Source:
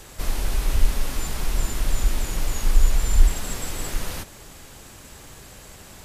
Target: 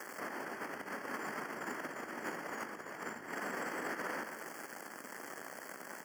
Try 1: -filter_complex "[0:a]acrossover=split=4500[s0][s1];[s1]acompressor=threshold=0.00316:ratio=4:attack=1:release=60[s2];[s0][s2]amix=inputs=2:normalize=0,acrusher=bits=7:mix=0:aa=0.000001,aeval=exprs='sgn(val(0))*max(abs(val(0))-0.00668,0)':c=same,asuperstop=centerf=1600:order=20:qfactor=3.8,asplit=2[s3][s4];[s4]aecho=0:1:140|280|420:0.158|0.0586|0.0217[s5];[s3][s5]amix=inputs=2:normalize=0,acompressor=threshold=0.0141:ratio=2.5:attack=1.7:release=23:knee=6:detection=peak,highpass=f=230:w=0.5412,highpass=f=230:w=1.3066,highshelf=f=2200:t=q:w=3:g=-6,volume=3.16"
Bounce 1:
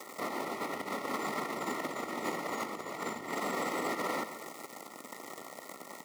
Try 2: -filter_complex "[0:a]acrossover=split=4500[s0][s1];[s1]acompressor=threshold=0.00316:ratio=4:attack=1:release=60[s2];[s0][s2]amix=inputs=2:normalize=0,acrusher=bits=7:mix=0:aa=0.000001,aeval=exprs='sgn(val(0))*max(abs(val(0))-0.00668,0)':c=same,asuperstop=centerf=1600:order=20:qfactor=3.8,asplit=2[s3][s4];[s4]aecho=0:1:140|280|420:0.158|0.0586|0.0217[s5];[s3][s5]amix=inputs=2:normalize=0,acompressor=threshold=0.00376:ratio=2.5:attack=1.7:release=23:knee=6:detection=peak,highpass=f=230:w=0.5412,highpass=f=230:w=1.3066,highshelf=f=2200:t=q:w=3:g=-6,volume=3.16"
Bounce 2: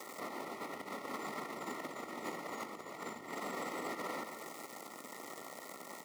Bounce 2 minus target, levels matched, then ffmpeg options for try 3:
2 kHz band -4.0 dB
-filter_complex "[0:a]acrossover=split=4500[s0][s1];[s1]acompressor=threshold=0.00316:ratio=4:attack=1:release=60[s2];[s0][s2]amix=inputs=2:normalize=0,acrusher=bits=7:mix=0:aa=0.000001,aeval=exprs='sgn(val(0))*max(abs(val(0))-0.00668,0)':c=same,asuperstop=centerf=3800:order=20:qfactor=3.8,asplit=2[s3][s4];[s4]aecho=0:1:140|280|420:0.158|0.0586|0.0217[s5];[s3][s5]amix=inputs=2:normalize=0,acompressor=threshold=0.00376:ratio=2.5:attack=1.7:release=23:knee=6:detection=peak,highpass=f=230:w=0.5412,highpass=f=230:w=1.3066,highshelf=f=2200:t=q:w=3:g=-6,volume=3.16"

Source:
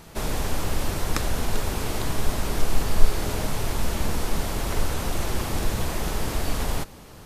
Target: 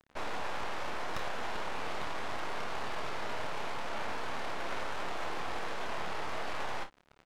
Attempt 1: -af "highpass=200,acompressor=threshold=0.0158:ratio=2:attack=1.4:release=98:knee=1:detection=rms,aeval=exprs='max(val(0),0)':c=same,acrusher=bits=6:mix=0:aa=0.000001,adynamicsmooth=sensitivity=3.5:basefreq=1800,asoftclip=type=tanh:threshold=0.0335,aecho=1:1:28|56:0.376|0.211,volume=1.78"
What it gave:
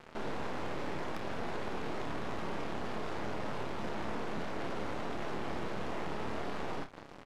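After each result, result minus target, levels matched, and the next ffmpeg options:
compression: peak gain reduction +11.5 dB; 250 Hz band +8.5 dB
-af "highpass=200,aeval=exprs='max(val(0),0)':c=same,acrusher=bits=6:mix=0:aa=0.000001,adynamicsmooth=sensitivity=3.5:basefreq=1800,asoftclip=type=tanh:threshold=0.0335,aecho=1:1:28|56:0.376|0.211,volume=1.78"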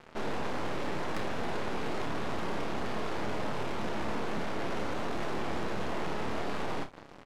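250 Hz band +8.5 dB
-af "highpass=720,aeval=exprs='max(val(0),0)':c=same,acrusher=bits=6:mix=0:aa=0.000001,adynamicsmooth=sensitivity=3.5:basefreq=1800,asoftclip=type=tanh:threshold=0.0335,aecho=1:1:28|56:0.376|0.211,volume=1.78"

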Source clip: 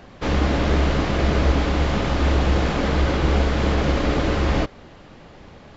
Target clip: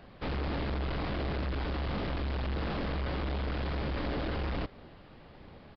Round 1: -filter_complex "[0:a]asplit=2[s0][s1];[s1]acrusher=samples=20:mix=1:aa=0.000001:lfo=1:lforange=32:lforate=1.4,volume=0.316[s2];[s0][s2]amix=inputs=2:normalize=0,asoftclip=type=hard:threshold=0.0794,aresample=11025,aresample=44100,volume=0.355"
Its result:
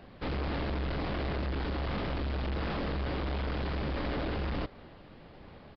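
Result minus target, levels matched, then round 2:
decimation with a swept rate: distortion -7 dB
-filter_complex "[0:a]asplit=2[s0][s1];[s1]acrusher=samples=73:mix=1:aa=0.000001:lfo=1:lforange=117:lforate=1.4,volume=0.316[s2];[s0][s2]amix=inputs=2:normalize=0,asoftclip=type=hard:threshold=0.0794,aresample=11025,aresample=44100,volume=0.355"

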